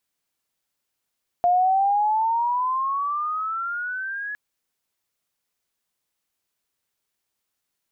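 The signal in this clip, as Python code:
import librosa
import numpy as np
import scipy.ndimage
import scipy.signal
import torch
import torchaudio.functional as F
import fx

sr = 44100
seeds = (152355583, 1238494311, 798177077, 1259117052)

y = fx.chirp(sr, length_s=2.91, from_hz=700.0, to_hz=1700.0, law='logarithmic', from_db=-15.0, to_db=-28.0)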